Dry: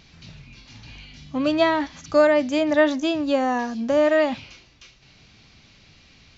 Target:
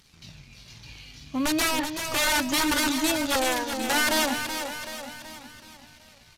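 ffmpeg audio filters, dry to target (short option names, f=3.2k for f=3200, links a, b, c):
-filter_complex "[0:a]aemphasis=mode=production:type=50fm,asplit=2[a][b];[b]acontrast=79,volume=-2dB[c];[a][c]amix=inputs=2:normalize=0,aeval=exprs='(mod(2.37*val(0)+1,2)-1)/2.37':c=same,asplit=2[d][e];[e]aecho=0:1:378|756|1134|1512|1890|2268|2646:0.422|0.232|0.128|0.0702|0.0386|0.0212|0.0117[f];[d][f]amix=inputs=2:normalize=0,flanger=delay=0.6:depth=2.4:regen=-54:speed=0.36:shape=triangular,aeval=exprs='sgn(val(0))*max(abs(val(0))-0.00447,0)':c=same,acrusher=bits=8:mode=log:mix=0:aa=0.000001,aresample=32000,aresample=44100,volume=-7dB"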